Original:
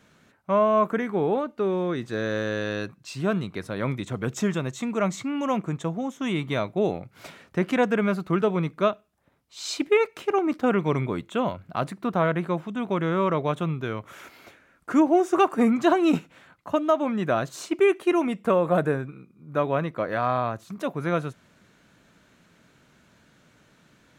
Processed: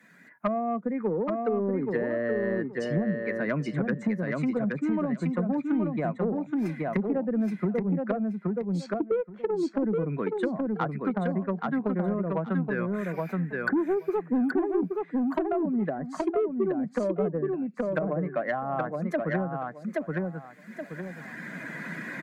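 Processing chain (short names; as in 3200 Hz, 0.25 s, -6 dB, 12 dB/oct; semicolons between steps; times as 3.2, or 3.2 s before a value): per-bin expansion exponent 1.5; recorder AGC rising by 11 dB/s; steep high-pass 150 Hz 36 dB/oct; treble ducked by the level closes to 370 Hz, closed at -23.5 dBFS; resonant high shelf 2400 Hz -6.5 dB, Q 3; soft clip -20 dBFS, distortion -17 dB; feedback echo 0.897 s, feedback 15%, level -4 dB; speed mistake 44.1 kHz file played as 48 kHz; three-band squash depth 70%; gain +2 dB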